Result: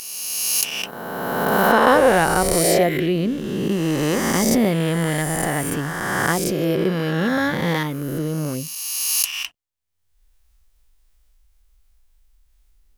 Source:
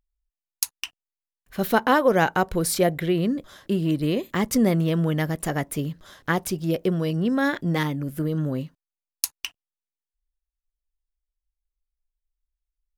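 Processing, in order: spectral swells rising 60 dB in 2.22 s; upward compressor, threshold -40 dBFS

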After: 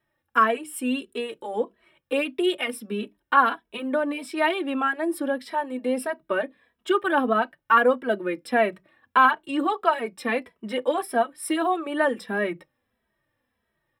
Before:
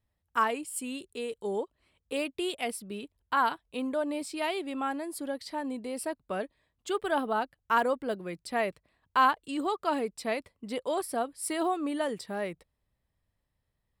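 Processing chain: bell 8000 Hz -4 dB 0.59 oct; in parallel at -1.5 dB: compressor, threshold -36 dBFS, peak gain reduction 17 dB; on the sum: reverb RT60 0.15 s, pre-delay 3 ms, DRR 14 dB; endless flanger 2.7 ms -1.6 Hz; gain +1.5 dB

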